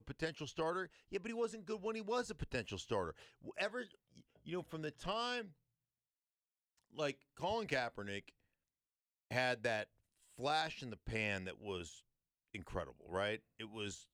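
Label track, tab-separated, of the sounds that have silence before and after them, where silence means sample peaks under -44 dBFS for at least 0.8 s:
6.980000	8.280000	sound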